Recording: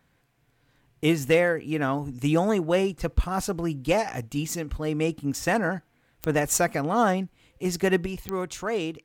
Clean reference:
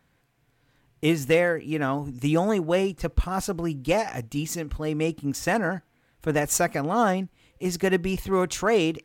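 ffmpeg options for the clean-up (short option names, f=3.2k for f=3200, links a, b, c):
-af "adeclick=t=4,asetnsamples=n=441:p=0,asendcmd='8.06 volume volume 6.5dB',volume=0dB"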